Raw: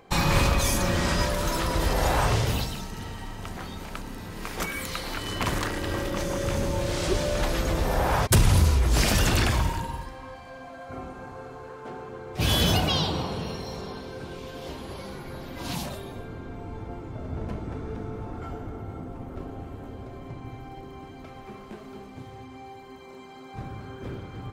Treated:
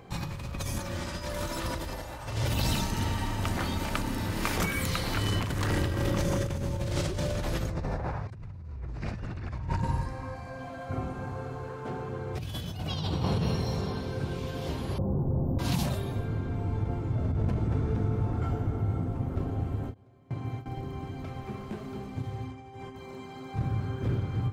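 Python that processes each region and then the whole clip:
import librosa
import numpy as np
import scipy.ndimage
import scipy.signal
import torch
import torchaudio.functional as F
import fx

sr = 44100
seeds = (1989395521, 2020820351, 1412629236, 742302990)

y = fx.chain(x, sr, fx.low_shelf(hz=280.0, db=-6.0),
    fx.comb(ms=3.4, depth=0.37),
    fx.over_compress(threshold_db=-32.0, ratio=-0.5), at=(0.78, 4.58))
y = fx.chain(y, sr, fx.peak_eq(hz=3200.0, db=-11.0, octaves=0.36),
    fx.env_lowpass_down(base_hz=2700.0, full_db=-18.0), at=(7.69, 10.59))
y = fx.chain(y, sr, fx.cheby2_bandstop(low_hz=2400.0, high_hz=8600.0, order=4, stop_db=60),
    fx.low_shelf(hz=430.0, db=6.5), at=(14.98, 15.59))
y = fx.chain(y, sr, fx.gate_hold(open_db=-28.0, close_db=-38.0, hold_ms=71.0, range_db=-21, attack_ms=1.4, release_ms=100.0),
    fx.highpass(hz=85.0, slope=12),
    fx.low_shelf(hz=190.0, db=-4.0), at=(19.94, 20.66))
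y = fx.chain(y, sr, fx.lowpass(hz=10000.0, slope=12),
    fx.notch(hz=4200.0, q=11.0),
    fx.over_compress(threshold_db=-46.0, ratio=-0.5), at=(22.51, 22.96))
y = fx.peak_eq(y, sr, hz=110.0, db=11.0, octaves=1.6)
y = fx.over_compress(y, sr, threshold_db=-26.0, ratio=-1.0)
y = fx.end_taper(y, sr, db_per_s=310.0)
y = F.gain(torch.from_numpy(y), -4.0).numpy()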